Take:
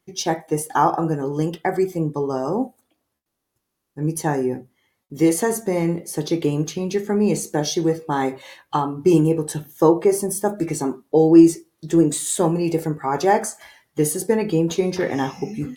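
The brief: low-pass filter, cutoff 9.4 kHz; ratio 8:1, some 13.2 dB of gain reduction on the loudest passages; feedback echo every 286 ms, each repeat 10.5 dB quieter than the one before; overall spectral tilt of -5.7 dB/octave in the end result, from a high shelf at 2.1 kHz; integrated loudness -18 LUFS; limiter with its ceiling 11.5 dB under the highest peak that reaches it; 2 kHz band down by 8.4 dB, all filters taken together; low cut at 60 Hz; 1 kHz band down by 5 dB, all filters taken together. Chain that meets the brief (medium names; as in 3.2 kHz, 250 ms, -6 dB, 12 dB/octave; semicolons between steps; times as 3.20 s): high-pass 60 Hz; low-pass 9.4 kHz; peaking EQ 1 kHz -4.5 dB; peaking EQ 2 kHz -6.5 dB; treble shelf 2.1 kHz -4.5 dB; compression 8:1, threshold -20 dBFS; peak limiter -21.5 dBFS; feedback delay 286 ms, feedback 30%, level -10.5 dB; trim +13 dB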